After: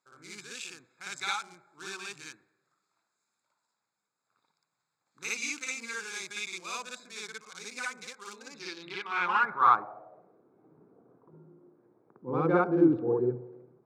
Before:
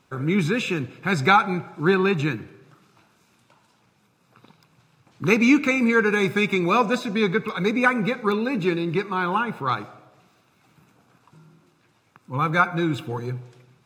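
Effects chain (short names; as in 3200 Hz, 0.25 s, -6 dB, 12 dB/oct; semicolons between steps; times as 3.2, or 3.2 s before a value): Wiener smoothing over 15 samples; reverse echo 57 ms -3.5 dB; band-pass sweep 7500 Hz -> 400 Hz, 8.38–10.42; gain +5.5 dB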